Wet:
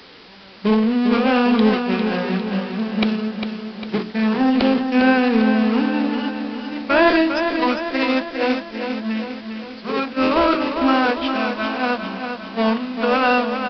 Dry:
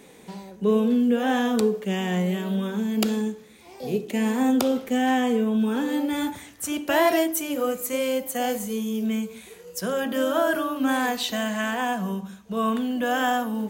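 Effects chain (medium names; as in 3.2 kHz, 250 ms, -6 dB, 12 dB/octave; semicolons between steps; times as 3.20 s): jump at every zero crossing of -23 dBFS; gate -21 dBFS, range -22 dB; high-pass 110 Hz 24 dB/octave; bass shelf 180 Hz -8 dB; hum notches 60/120/180/240/300/360/420 Hz; in parallel at -7 dB: word length cut 6-bit, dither triangular; on the sum: one-sided clip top -15 dBFS; formant shift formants -3 st; feedback delay 402 ms, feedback 55%, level -7 dB; resampled via 11.025 kHz; trim +2 dB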